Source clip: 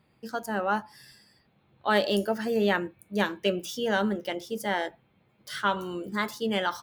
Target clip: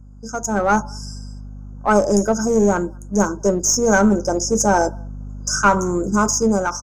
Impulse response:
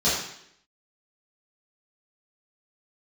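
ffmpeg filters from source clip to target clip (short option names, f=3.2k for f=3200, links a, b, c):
-filter_complex "[0:a]lowpass=f=6.6k:t=q:w=12,lowshelf=f=100:g=11,asplit=2[a][b];[b]adelay=200,highpass=300,lowpass=3.4k,asoftclip=type=hard:threshold=-19.5dB,volume=-30dB[c];[a][c]amix=inputs=2:normalize=0,afftfilt=real='re*(1-between(b*sr/4096,1600,4900))':imag='im*(1-between(b*sr/4096,1600,4900))':win_size=4096:overlap=0.75,adynamicequalizer=threshold=0.01:dfrequency=1200:dqfactor=2:tfrequency=1200:tqfactor=2:attack=5:release=100:ratio=0.375:range=1.5:mode=cutabove:tftype=bell,asplit=2[d][e];[e]aeval=exprs='clip(val(0),-1,0.0376)':c=same,volume=-4dB[f];[d][f]amix=inputs=2:normalize=0,aeval=exprs='val(0)+0.0112*(sin(2*PI*50*n/s)+sin(2*PI*2*50*n/s)/2+sin(2*PI*3*50*n/s)/3+sin(2*PI*4*50*n/s)/4+sin(2*PI*5*50*n/s)/5)':c=same,dynaudnorm=f=110:g=11:m=15dB,volume=-1.5dB"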